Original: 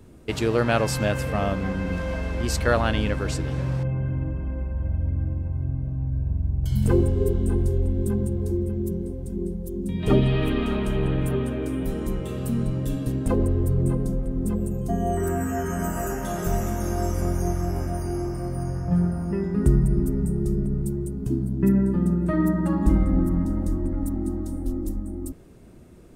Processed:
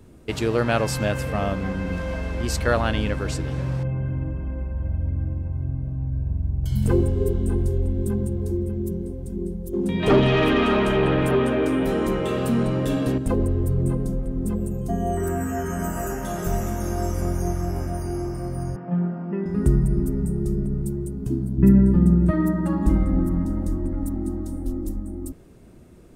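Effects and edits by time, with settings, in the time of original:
9.73–13.18 s: overdrive pedal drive 21 dB, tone 2 kHz, clips at -7.5 dBFS
18.76–19.46 s: elliptic band-pass 180–3100 Hz
21.58–22.31 s: bass shelf 170 Hz +11.5 dB

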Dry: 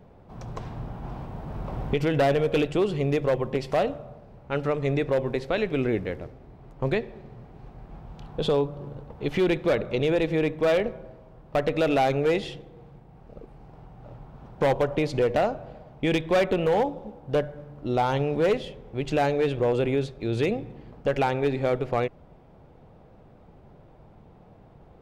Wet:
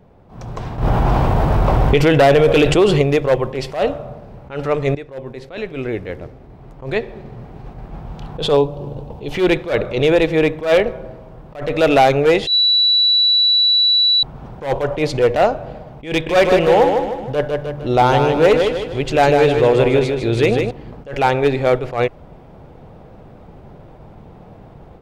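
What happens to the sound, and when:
0.78–3.02 s: level flattener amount 70%
4.95–7.70 s: fade in, from -16.5 dB
8.57–9.35 s: high-order bell 1.6 kHz -9 dB 1.1 oct
12.47–14.23 s: bleep 3.94 kHz -22 dBFS
16.11–20.71 s: feedback delay 154 ms, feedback 42%, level -5.5 dB
whole clip: dynamic bell 200 Hz, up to -6 dB, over -40 dBFS, Q 1.1; level rider gain up to 9 dB; attacks held to a fixed rise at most 150 dB/s; trim +2.5 dB

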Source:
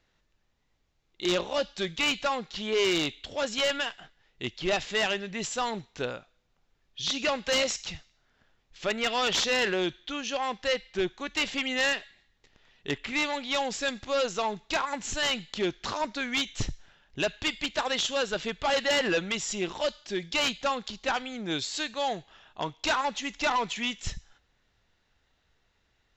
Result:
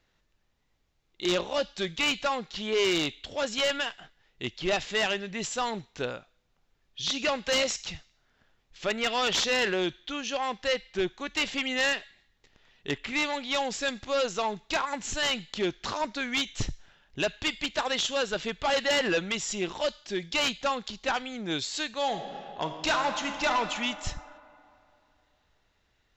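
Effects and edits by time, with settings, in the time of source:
21.98–23.55 s: reverb throw, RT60 2.7 s, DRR 5.5 dB

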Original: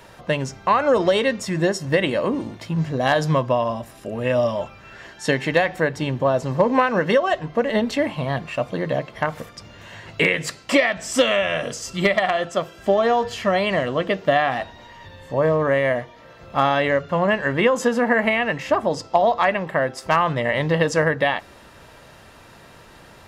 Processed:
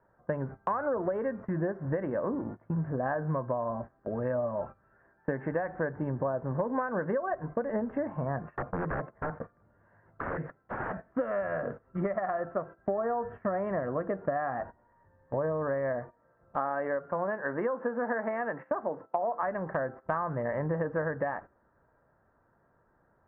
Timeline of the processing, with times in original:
8.55–11.12 s: integer overflow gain 18.5 dB
16.56–19.43 s: Bessel high-pass 280 Hz
whole clip: elliptic low-pass 1.6 kHz, stop band 60 dB; gate -34 dBFS, range -17 dB; compression 4:1, threshold -25 dBFS; trim -3.5 dB

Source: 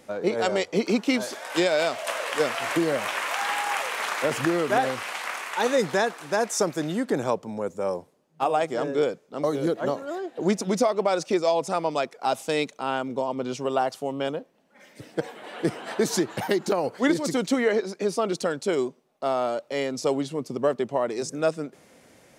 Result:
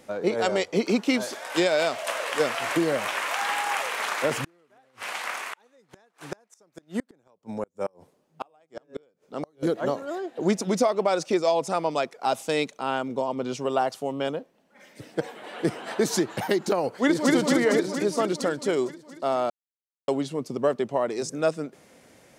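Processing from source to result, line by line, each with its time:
4.44–9.63 s: inverted gate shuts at -18 dBFS, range -37 dB
16.91–17.33 s: echo throw 230 ms, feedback 70%, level -0.5 dB
19.50–20.08 s: mute

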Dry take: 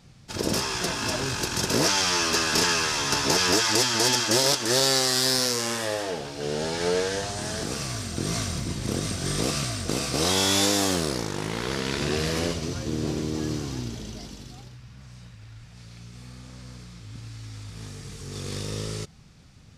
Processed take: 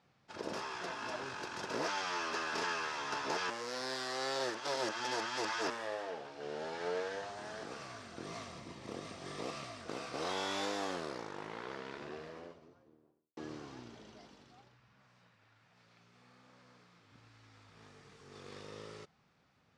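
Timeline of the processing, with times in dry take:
3.50–5.70 s: reverse
8.25–9.80 s: band-stop 1.5 kHz, Q 6.2
11.16–13.37 s: studio fade out
14.93–17.12 s: high-pass 120 Hz
whole clip: low-pass 1 kHz 12 dB/octave; differentiator; trim +11.5 dB

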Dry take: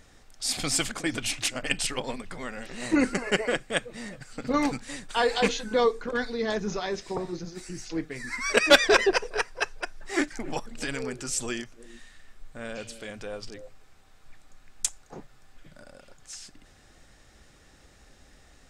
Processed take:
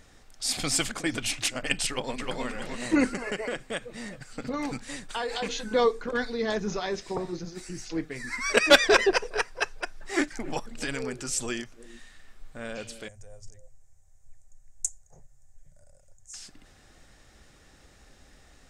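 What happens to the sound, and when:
1.87–2.44 s: echo throw 310 ms, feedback 35%, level -2 dB
3.09–5.68 s: compression, threshold -27 dBFS
13.08–16.34 s: FFT filter 100 Hz 0 dB, 150 Hz -9 dB, 270 Hz -29 dB, 600 Hz -11 dB, 1.3 kHz -25 dB, 1.9 kHz -17 dB, 2.7 kHz -26 dB, 4.3 kHz -24 dB, 6.7 kHz +1 dB, 12 kHz -8 dB

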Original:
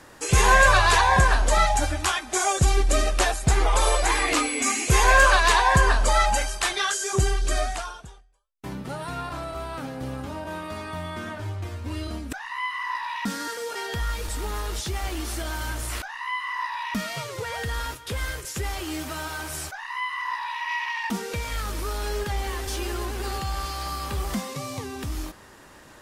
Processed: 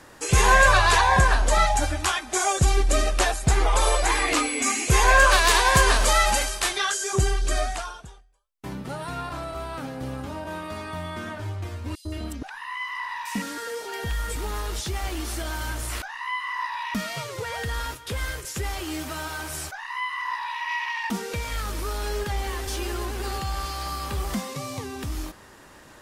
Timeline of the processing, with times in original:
5.30–6.76 s: formants flattened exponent 0.6
11.95–14.36 s: three bands offset in time highs, lows, mids 100/170 ms, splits 1.1/4.5 kHz

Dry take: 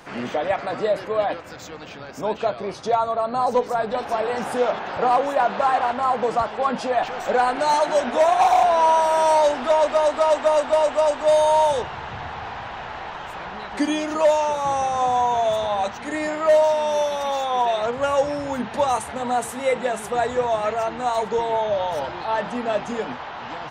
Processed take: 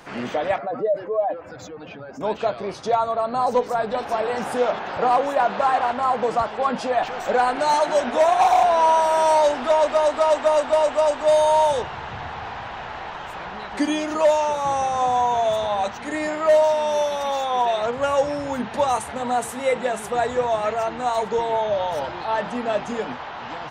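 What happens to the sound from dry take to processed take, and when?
0.58–2.21 s: spectral contrast enhancement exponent 1.8

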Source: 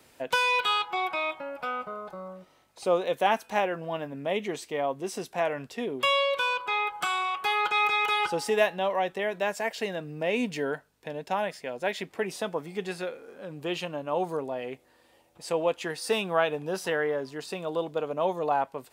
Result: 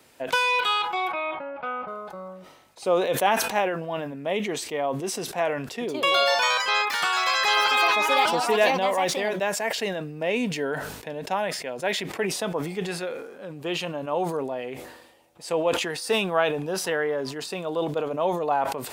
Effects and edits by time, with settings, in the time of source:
1.12–1.88 s: Bessel low-pass 2.3 kHz, order 4
5.61–10.13 s: ever faster or slower copies 200 ms, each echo +4 st, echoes 3
whole clip: bass shelf 79 Hz -6.5 dB; decay stretcher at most 56 dB/s; trim +2 dB

